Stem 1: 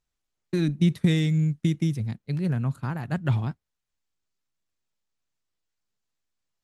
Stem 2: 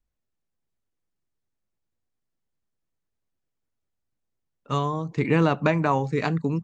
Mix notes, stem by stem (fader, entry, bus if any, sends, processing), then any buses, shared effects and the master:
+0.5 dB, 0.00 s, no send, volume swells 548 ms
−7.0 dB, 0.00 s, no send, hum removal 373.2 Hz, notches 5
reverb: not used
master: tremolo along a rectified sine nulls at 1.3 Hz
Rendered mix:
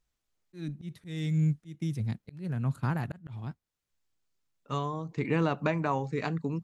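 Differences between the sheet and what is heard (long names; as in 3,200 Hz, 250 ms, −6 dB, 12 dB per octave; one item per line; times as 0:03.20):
stem 2: missing hum removal 373.2 Hz, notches 5
master: missing tremolo along a rectified sine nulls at 1.3 Hz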